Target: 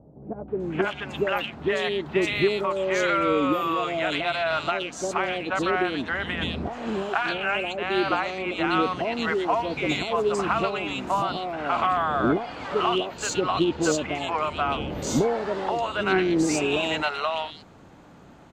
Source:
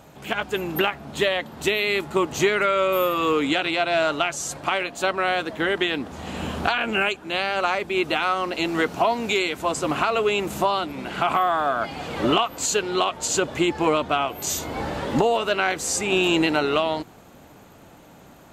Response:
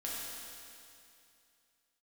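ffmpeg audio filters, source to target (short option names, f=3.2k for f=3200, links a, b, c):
-filter_complex "[0:a]acrossover=split=620|2600[a][b][c];[b]adelay=480[d];[c]adelay=600[e];[a][d][e]amix=inputs=3:normalize=0,adynamicsmooth=sensitivity=0.5:basefreq=5.4k"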